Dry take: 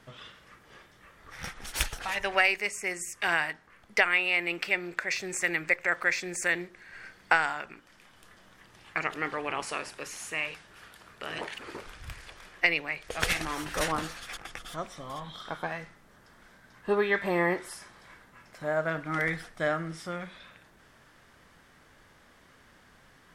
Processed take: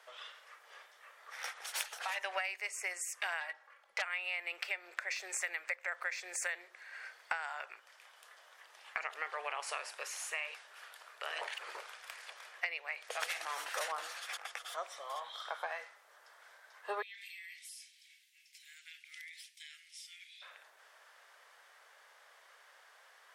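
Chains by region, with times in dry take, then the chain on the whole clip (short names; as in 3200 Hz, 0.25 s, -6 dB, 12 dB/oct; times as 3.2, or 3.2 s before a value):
3.4–4.02 high shelf 3600 Hz -7 dB + comb 3.6 ms, depth 66% + core saturation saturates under 3400 Hz
17.02–20.42 steep high-pass 2300 Hz 48 dB/oct + compressor 12:1, threshold -44 dBFS
whole clip: inverse Chebyshev high-pass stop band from 270 Hz, stop band 40 dB; compressor 6:1, threshold -33 dBFS; gain -1.5 dB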